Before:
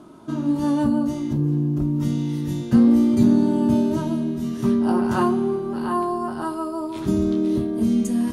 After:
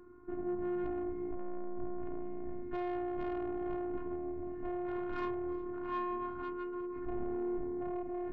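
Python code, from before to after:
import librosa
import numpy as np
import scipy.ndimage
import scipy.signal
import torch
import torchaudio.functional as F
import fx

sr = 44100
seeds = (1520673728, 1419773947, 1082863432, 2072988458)

p1 = scipy.signal.sosfilt(scipy.signal.butter(4, 2100.0, 'lowpass', fs=sr, output='sos'), x)
p2 = fx.low_shelf(p1, sr, hz=190.0, db=10.0)
p3 = fx.fixed_phaser(p2, sr, hz=1400.0, stages=4)
p4 = 10.0 ** (-22.5 / 20.0) * np.tanh(p3 / 10.0 ** (-22.5 / 20.0))
p5 = fx.robotise(p4, sr, hz=355.0)
p6 = p5 + fx.echo_single(p5, sr, ms=359, db=-21.0, dry=0)
y = F.gain(torch.from_numpy(p6), -7.5).numpy()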